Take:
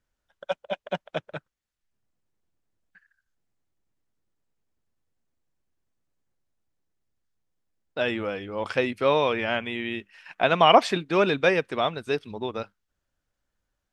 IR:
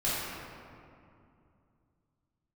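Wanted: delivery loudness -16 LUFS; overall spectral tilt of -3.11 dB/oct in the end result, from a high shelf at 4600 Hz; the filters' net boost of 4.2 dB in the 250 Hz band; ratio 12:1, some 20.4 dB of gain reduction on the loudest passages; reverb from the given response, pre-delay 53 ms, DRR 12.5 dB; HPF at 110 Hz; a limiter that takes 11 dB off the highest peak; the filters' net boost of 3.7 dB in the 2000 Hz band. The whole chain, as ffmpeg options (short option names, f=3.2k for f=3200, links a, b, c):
-filter_complex "[0:a]highpass=110,equalizer=f=250:t=o:g=6,equalizer=f=2k:t=o:g=4,highshelf=f=4.6k:g=4.5,acompressor=threshold=-29dB:ratio=12,alimiter=level_in=0.5dB:limit=-24dB:level=0:latency=1,volume=-0.5dB,asplit=2[a][b];[1:a]atrim=start_sample=2205,adelay=53[c];[b][c]afir=irnorm=-1:irlink=0,volume=-22.5dB[d];[a][d]amix=inputs=2:normalize=0,volume=21.5dB"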